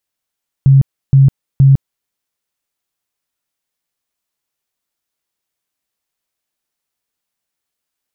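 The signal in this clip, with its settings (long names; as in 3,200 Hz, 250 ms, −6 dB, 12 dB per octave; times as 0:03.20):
tone bursts 136 Hz, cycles 21, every 0.47 s, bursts 3, −3.5 dBFS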